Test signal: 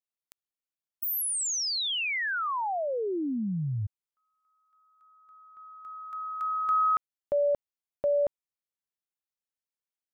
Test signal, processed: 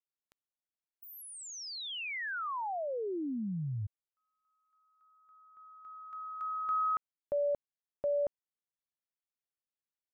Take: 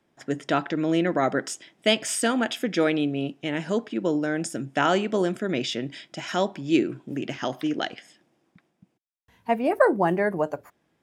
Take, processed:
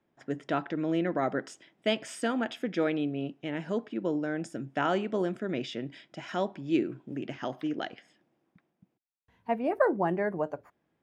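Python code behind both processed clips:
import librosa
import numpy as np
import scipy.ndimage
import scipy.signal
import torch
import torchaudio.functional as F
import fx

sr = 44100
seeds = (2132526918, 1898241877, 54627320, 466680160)

y = fx.lowpass(x, sr, hz=2300.0, slope=6)
y = y * librosa.db_to_amplitude(-5.5)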